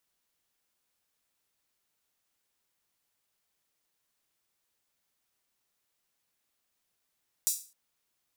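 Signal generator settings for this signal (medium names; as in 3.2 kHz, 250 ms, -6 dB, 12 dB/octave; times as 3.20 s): open hi-hat length 0.26 s, high-pass 6.6 kHz, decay 0.36 s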